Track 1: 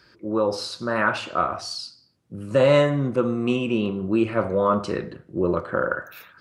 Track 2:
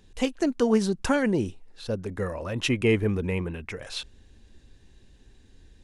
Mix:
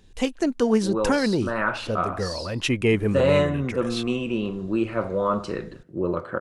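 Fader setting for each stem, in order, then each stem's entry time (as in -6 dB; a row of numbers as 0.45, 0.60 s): -3.0, +1.5 dB; 0.60, 0.00 s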